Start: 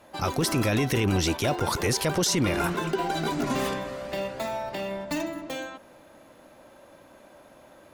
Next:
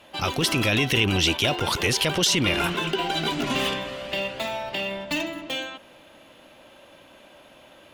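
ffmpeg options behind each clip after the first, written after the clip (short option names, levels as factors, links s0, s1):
-af "equalizer=f=3000:t=o:w=0.79:g=14"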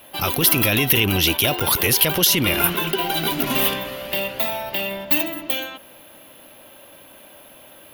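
-af "aexciter=amount=10.5:drive=8.1:freq=11000,volume=1.33"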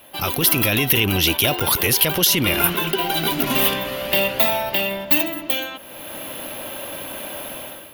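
-af "dynaudnorm=f=120:g=7:m=5.62,volume=0.891"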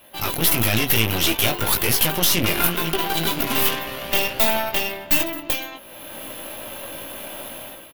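-filter_complex "[0:a]asplit=2[s0][s1];[s1]adelay=18,volume=0.562[s2];[s0][s2]amix=inputs=2:normalize=0,aeval=exprs='0.944*(cos(1*acos(clip(val(0)/0.944,-1,1)))-cos(1*PI/2))+0.15*(cos(8*acos(clip(val(0)/0.944,-1,1)))-cos(8*PI/2))':c=same,volume=0.631"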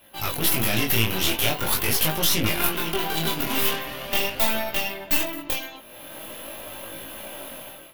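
-af "flanger=delay=18.5:depth=7.9:speed=0.43"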